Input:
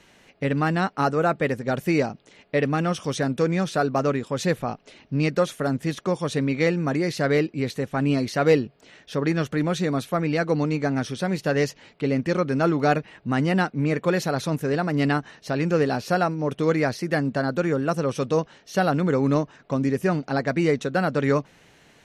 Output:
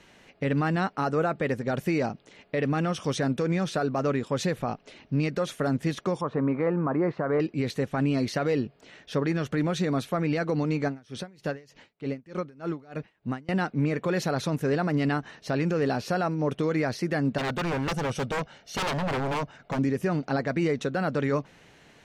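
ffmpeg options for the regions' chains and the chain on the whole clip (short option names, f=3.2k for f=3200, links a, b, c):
-filter_complex "[0:a]asettb=1/sr,asplit=3[a][b][c];[a]atrim=end=6.214[d];[b]atrim=start=6.21:end=7.4,asetpts=PTS-STARTPTS,afade=t=in:d=0.004:c=qsin,afade=t=out:st=1.186:d=0.004:c=qsin,lowpass=f=1.1k:t=q:w=2.9,lowshelf=f=82:g=-11[e];[c]atrim=start=7.396[f];[d][e]acrossfade=d=0.004:c1=hsin:c2=qsin[g];[g][f]acrossfade=d=0.004:c1=qsin:c2=hsin,asettb=1/sr,asplit=3[h][i][j];[h]atrim=end=10.884[k];[i]atrim=start=10.88:end=13.49,asetpts=PTS-STARTPTS,afade=t=in:d=0.004:c=qsin,afade=t=out:st=2.606:d=0.004:c=qsin,acompressor=threshold=-24dB:ratio=5:attack=3.2:release=140:knee=1:detection=peak,aeval=exprs='val(0)*pow(10,-26*(0.5-0.5*cos(2*PI*3.3*n/s))/20)':c=same[l];[j]atrim=start=13.486[m];[k][l]acrossfade=d=0.004:c1=hsin:c2=qsin[n];[n][m]acrossfade=d=0.004:c1=qsin:c2=hsin,asettb=1/sr,asplit=3[o][p][q];[o]atrim=end=17.384[r];[p]atrim=start=17.38:end=19.79,asetpts=PTS-STARTPTS,afade=t=in:d=0.004:c=qsin,afade=t=out:st=2.406:d=0.004:c=qsin,aecho=1:1:1.4:0.4,atrim=end_sample=106281,aeval=exprs='0.075*(abs(mod(val(0)/0.075+3,4)-2)-1)':c=same[s];[q]atrim=start=19.786[t];[r][s]acrossfade=d=0.004:c1=hsin:c2=qsin[u];[u][t]acrossfade=d=0.004:c1=qsin:c2=hsin,highshelf=f=7.3k:g=-6,alimiter=limit=-17.5dB:level=0:latency=1:release=66"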